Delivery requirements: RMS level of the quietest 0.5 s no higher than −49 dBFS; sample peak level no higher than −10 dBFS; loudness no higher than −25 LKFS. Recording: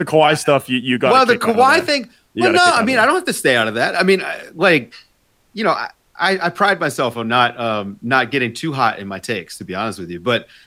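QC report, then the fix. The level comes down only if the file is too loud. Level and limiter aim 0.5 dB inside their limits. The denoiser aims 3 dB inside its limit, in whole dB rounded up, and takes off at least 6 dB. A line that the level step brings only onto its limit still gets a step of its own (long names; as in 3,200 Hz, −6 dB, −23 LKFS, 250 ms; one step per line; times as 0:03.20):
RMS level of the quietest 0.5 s −59 dBFS: in spec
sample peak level −2.0 dBFS: out of spec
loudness −16.0 LKFS: out of spec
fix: level −9.5 dB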